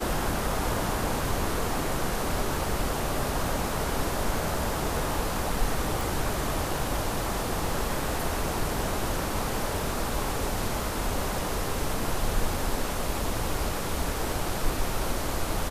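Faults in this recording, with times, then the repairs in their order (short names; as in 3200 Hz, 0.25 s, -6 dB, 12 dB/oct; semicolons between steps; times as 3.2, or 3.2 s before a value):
6.01 pop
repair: de-click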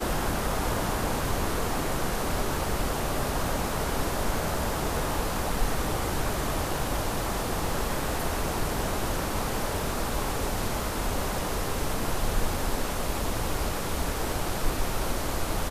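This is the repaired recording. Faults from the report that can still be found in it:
none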